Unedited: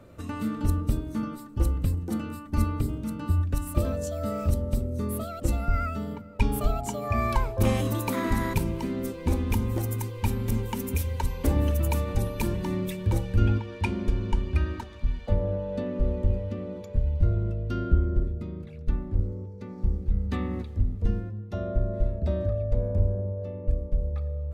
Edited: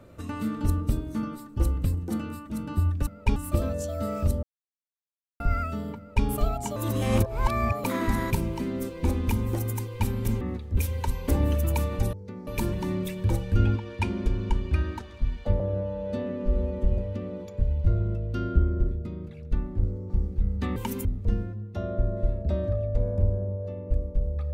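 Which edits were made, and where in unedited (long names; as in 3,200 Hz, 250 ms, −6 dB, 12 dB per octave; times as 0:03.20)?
0:02.50–0:03.02: remove
0:04.66–0:05.63: silence
0:06.20–0:06.49: duplicate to 0:03.59
0:06.99–0:08.07: reverse
0:10.64–0:10.93: swap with 0:20.46–0:20.82
0:15.42–0:16.34: time-stretch 1.5×
0:19.46–0:19.80: move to 0:12.29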